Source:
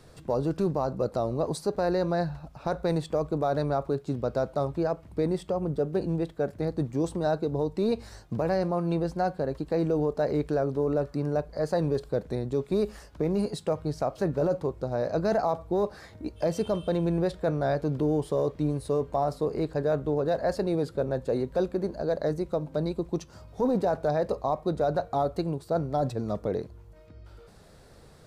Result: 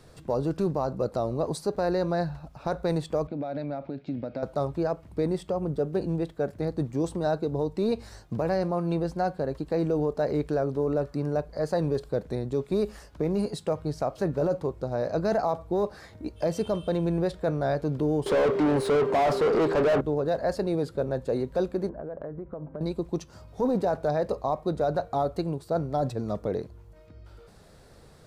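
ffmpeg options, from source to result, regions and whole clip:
ffmpeg -i in.wav -filter_complex "[0:a]asettb=1/sr,asplit=3[link_01][link_02][link_03];[link_01]atrim=end=3.274[link_04];[link_02]atrim=start=3.27:end=4.43,asetpts=PTS-STARTPTS,afade=type=in:duration=0.004:curve=qsin,afade=type=out:start_time=1.156:duration=0.004:curve=qsin,acompressor=threshold=-29dB:ratio=10:attack=3.2:release=140:knee=1:detection=peak,highpass=110,equalizer=frequency=270:width_type=q:width=4:gain=8,equalizer=frequency=410:width_type=q:width=4:gain=-8,equalizer=frequency=590:width_type=q:width=4:gain=4,equalizer=frequency=1100:width_type=q:width=4:gain=-10,equalizer=frequency=2300:width_type=q:width=4:gain=9,lowpass=frequency=4300:width=0.5412,lowpass=frequency=4300:width=1.3066[link_05];[link_03]atrim=start=4.426[link_06];[link_04][link_05]acrossfade=duration=0.004:curve1=hsin:curve2=qsin[link_07];[link_07][link_06]acrossfade=duration=0.004:curve1=qsin:curve2=hsin,asettb=1/sr,asplit=3[link_08][link_09][link_10];[link_08]atrim=end=18.264[link_11];[link_09]atrim=start=18.26:end=20.01,asetpts=PTS-STARTPTS,afade=type=in:duration=0.004:curve=qsin,afade=type=out:start_time=1.746:duration=0.004:curve=qsin,highpass=frequency=140:width=0.5412,highpass=frequency=140:width=1.3066,aeval=exprs='val(0)+0.00631*sin(2*PI*400*n/s)':channel_layout=same,asplit=2[link_12][link_13];[link_13]highpass=frequency=720:poles=1,volume=33dB,asoftclip=type=tanh:threshold=-15dB[link_14];[link_12][link_14]amix=inputs=2:normalize=0,lowpass=frequency=1200:poles=1,volume=-6dB[link_15];[link_10]atrim=start=20.006[link_16];[link_11][link_15]acrossfade=duration=0.004:curve1=hsin:curve2=qsin[link_17];[link_17][link_16]acrossfade=duration=0.004:curve1=qsin:curve2=hsin,asettb=1/sr,asplit=3[link_18][link_19][link_20];[link_18]atrim=end=21.894[link_21];[link_19]atrim=start=21.89:end=22.81,asetpts=PTS-STARTPTS,afade=type=in:duration=0.004:curve=qsin,afade=type=out:start_time=0.916:duration=0.004:curve=qsin,lowpass=frequency=1700:width=0.5412,lowpass=frequency=1700:width=1.3066,bandreject=frequency=880:width=17,acompressor=threshold=-32dB:ratio=12:attack=3.2:release=140:knee=1:detection=peak[link_22];[link_20]atrim=start=22.806[link_23];[link_21][link_22]acrossfade=duration=0.004:curve1=hsin:curve2=qsin[link_24];[link_24][link_23]acrossfade=duration=0.004:curve1=qsin:curve2=hsin" out.wav

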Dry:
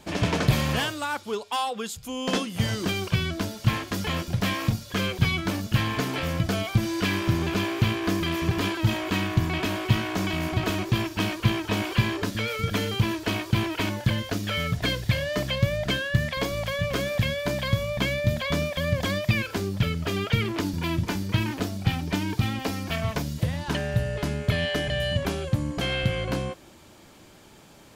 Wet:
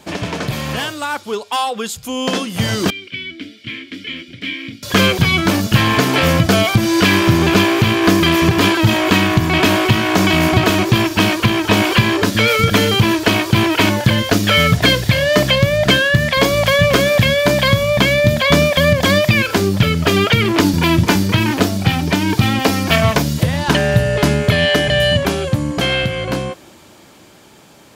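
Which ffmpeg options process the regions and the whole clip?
ffmpeg -i in.wav -filter_complex "[0:a]asettb=1/sr,asplit=3[link_01][link_02][link_03];[link_01]atrim=end=2.904[link_04];[link_02]atrim=start=2.9:end=4.83,asetpts=PTS-STARTPTS,afade=type=in:duration=0.004:curve=qsin,afade=type=out:start_time=1.926:duration=0.004:curve=qsin,asplit=3[link_05][link_06][link_07];[link_05]bandpass=frequency=270:width_type=q:width=8,volume=0dB[link_08];[link_06]bandpass=frequency=2290:width_type=q:width=8,volume=-6dB[link_09];[link_07]bandpass=frequency=3010:width_type=q:width=8,volume=-9dB[link_10];[link_08][link_09][link_10]amix=inputs=3:normalize=0,equalizer=frequency=210:width_type=o:width=1.3:gain=-10,bandreject=frequency=6400:width=12[link_11];[link_03]atrim=start=4.826[link_12];[link_04][link_11]acrossfade=duration=0.004:curve1=hsin:curve2=qsin[link_13];[link_13][link_12]acrossfade=duration=0.004:curve1=qsin:curve2=hsin,highpass=frequency=120:poles=1,alimiter=limit=-17.5dB:level=0:latency=1:release=285,dynaudnorm=framelen=260:gausssize=21:maxgain=9.5dB,volume=7dB" out.wav

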